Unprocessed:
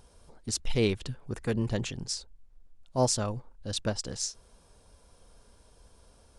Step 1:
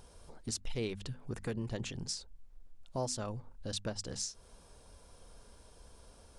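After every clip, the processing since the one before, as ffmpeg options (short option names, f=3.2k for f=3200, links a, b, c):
-af "bandreject=f=50:t=h:w=6,bandreject=f=100:t=h:w=6,bandreject=f=150:t=h:w=6,bandreject=f=200:t=h:w=6,bandreject=f=250:t=h:w=6,acompressor=threshold=-40dB:ratio=2.5,volume=1.5dB"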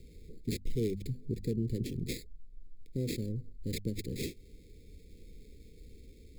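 -filter_complex "[0:a]acrossover=split=190|1700[a][b][c];[c]acrusher=samples=15:mix=1:aa=0.000001[d];[a][b][d]amix=inputs=3:normalize=0,asuperstop=centerf=1000:order=12:qfactor=0.58,volume=5.5dB"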